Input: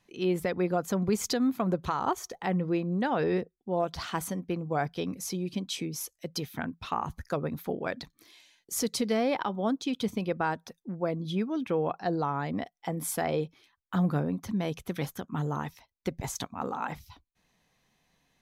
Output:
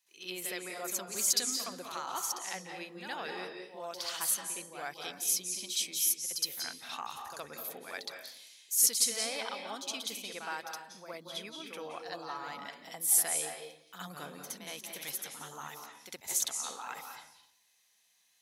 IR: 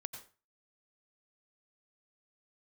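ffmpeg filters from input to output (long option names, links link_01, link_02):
-filter_complex "[0:a]aderivative,asplit=2[link_01][link_02];[1:a]atrim=start_sample=2205,asetrate=22932,aresample=44100,adelay=66[link_03];[link_02][link_03]afir=irnorm=-1:irlink=0,volume=7dB[link_04];[link_01][link_04]amix=inputs=2:normalize=0"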